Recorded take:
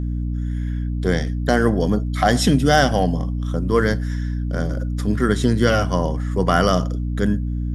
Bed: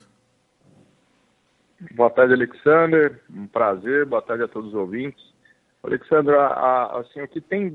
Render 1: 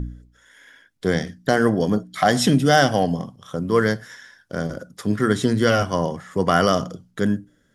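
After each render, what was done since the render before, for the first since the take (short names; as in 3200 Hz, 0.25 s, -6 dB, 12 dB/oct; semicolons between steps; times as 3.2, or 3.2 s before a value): de-hum 60 Hz, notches 5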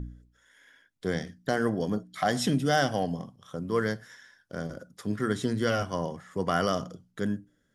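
gain -9 dB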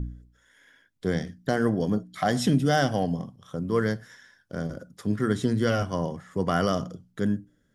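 low shelf 350 Hz +6 dB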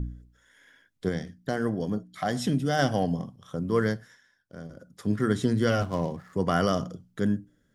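1.09–2.79 gain -4 dB; 3.87–5.08 dip -10 dB, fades 0.35 s; 5.81–6.33 median filter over 15 samples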